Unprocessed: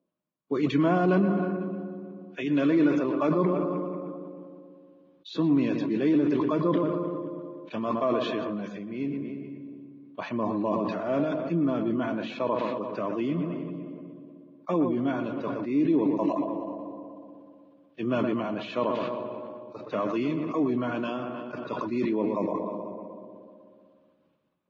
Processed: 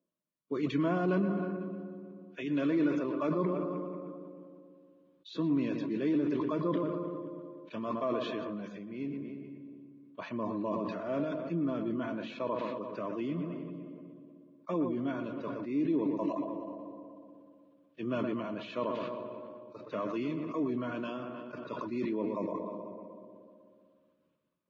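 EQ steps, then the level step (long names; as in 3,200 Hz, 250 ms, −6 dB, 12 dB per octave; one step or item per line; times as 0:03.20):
Butterworth band-reject 790 Hz, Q 5.3
−6.5 dB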